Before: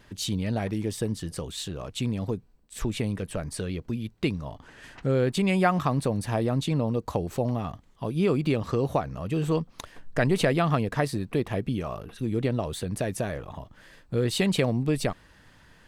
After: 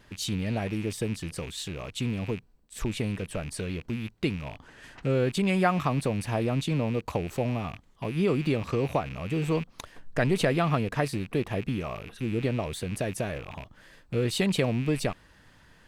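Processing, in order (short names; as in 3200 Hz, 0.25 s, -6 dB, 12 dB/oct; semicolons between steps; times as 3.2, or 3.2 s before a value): rattling part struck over -40 dBFS, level -30 dBFS; gain -1.5 dB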